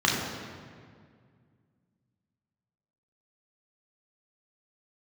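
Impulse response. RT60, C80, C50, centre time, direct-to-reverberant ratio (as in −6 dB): 2.0 s, 3.0 dB, 1.5 dB, 84 ms, −3.5 dB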